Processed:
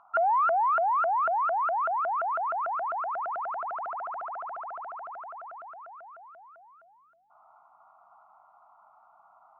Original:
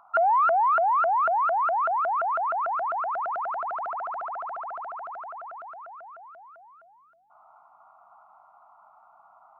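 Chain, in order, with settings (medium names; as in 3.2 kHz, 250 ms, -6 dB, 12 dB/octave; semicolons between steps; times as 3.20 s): low-pass 3.5 kHz; trim -3 dB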